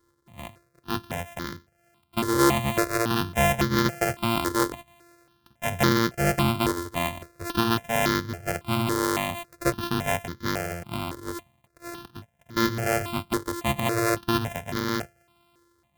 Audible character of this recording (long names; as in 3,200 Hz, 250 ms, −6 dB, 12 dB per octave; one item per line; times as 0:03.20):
a buzz of ramps at a fixed pitch in blocks of 128 samples
notches that jump at a steady rate 3.6 Hz 700–2,600 Hz